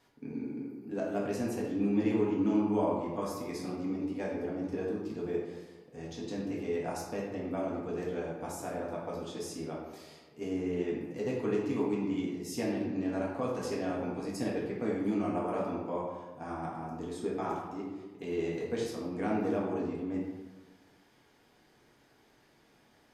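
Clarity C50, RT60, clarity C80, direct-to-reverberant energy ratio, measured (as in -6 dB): 1.0 dB, 1.2 s, 4.0 dB, -5.0 dB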